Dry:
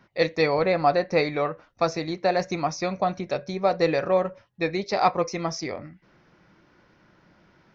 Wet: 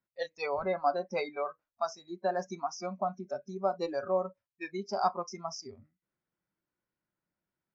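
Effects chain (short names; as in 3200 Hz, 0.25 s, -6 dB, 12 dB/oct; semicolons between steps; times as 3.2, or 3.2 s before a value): spectral noise reduction 25 dB; gain -7.5 dB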